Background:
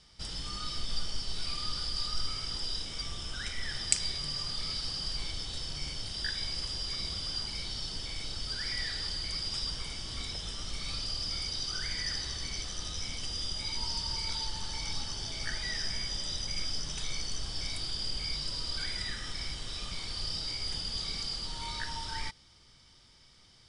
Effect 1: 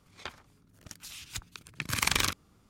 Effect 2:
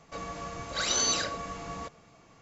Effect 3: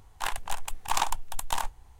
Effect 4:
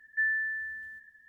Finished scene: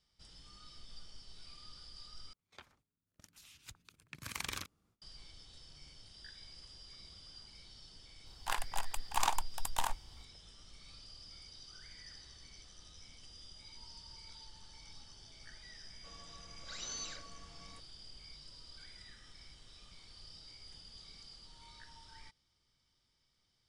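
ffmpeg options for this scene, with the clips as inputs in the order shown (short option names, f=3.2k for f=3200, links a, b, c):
-filter_complex "[0:a]volume=-18.5dB[a];[1:a]agate=range=-16dB:threshold=-52dB:ratio=16:release=383:detection=peak[b];[2:a]equalizer=f=520:w=0.47:g=-6.5[c];[a]asplit=2[d][e];[d]atrim=end=2.334[f];[b]atrim=end=2.69,asetpts=PTS-STARTPTS,volume=-14dB[g];[e]atrim=start=5.016[h];[3:a]atrim=end=1.99,asetpts=PTS-STARTPTS,volume=-5dB,afade=t=in:d=0.004:c=hsin,afade=t=out:st=1.986:d=0.004:c=hsin,adelay=364266S[i];[c]atrim=end=2.41,asetpts=PTS-STARTPTS,volume=-15.5dB,afade=t=in:d=0.004:c=hsin,afade=t=out:st=2.406:d=0.004:c=hsin,adelay=15920[j];[f][g]acrossfade=d=0.004:c1=hsin:c2=hsin[k];[k][h]acrossfade=d=0.004:c1=hsin:c2=hsin[l];[l][i][j]amix=inputs=3:normalize=0"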